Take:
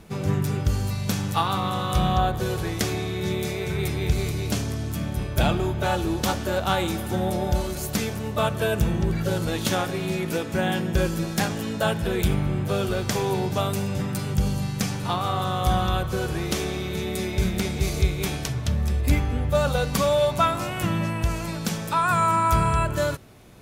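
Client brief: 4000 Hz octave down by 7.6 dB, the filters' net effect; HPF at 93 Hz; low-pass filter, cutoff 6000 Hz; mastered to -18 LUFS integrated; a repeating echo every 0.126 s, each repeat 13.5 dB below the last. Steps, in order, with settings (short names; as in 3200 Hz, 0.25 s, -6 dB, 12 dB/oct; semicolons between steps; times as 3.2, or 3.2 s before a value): HPF 93 Hz; LPF 6000 Hz; bell 4000 Hz -9 dB; feedback echo 0.126 s, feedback 21%, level -13.5 dB; gain +8.5 dB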